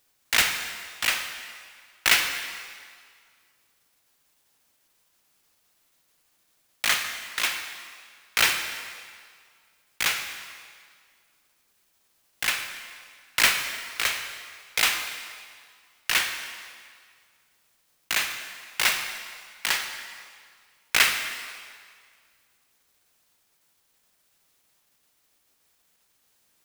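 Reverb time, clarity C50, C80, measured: 1.9 s, 7.0 dB, 8.0 dB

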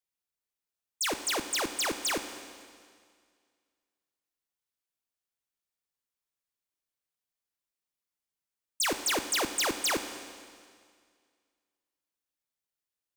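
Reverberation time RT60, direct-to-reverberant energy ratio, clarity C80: 2.0 s, 8.0 dB, 10.5 dB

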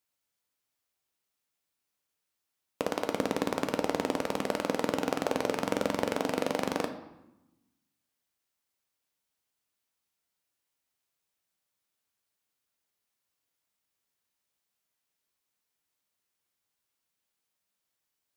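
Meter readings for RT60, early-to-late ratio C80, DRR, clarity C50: 0.95 s, 13.0 dB, 6.0 dB, 10.0 dB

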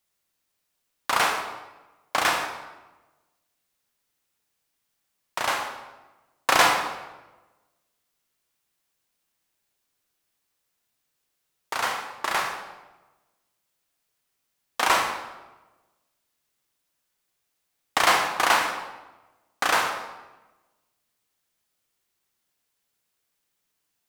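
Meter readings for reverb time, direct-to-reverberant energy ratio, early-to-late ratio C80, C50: 1.1 s, 3.5 dB, 7.5 dB, 5.5 dB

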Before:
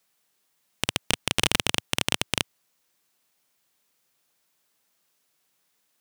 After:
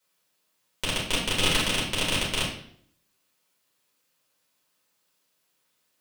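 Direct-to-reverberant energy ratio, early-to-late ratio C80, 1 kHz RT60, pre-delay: -7.0 dB, 8.5 dB, 0.55 s, 4 ms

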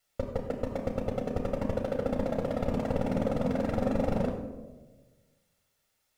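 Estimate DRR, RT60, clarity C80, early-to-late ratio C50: 1.0 dB, 1.3 s, 7.5 dB, 6.0 dB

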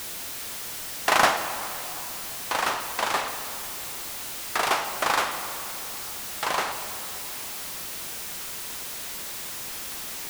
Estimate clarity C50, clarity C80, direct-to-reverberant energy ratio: 8.0 dB, 9.0 dB, 7.0 dB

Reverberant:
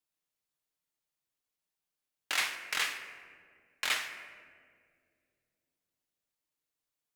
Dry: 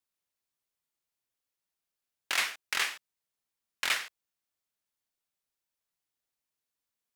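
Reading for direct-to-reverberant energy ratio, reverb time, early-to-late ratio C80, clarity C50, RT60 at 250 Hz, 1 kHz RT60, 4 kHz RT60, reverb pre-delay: 5.0 dB, 2.2 s, 9.5 dB, 8.5 dB, 3.6 s, 1.6 s, 1.0 s, 6 ms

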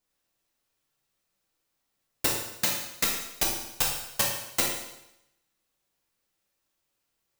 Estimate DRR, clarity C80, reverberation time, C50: -3.0 dB, 5.5 dB, 0.85 s, 2.5 dB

